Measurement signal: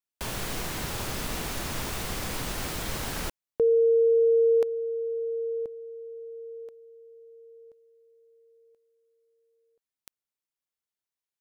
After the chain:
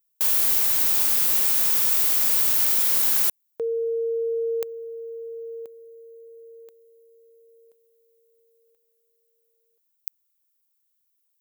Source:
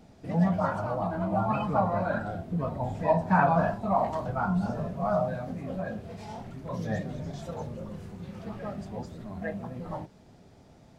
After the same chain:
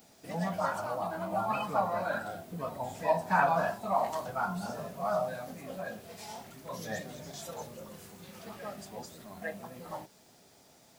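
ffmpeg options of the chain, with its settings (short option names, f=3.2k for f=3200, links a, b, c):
-af "aemphasis=mode=production:type=riaa,volume=-2dB"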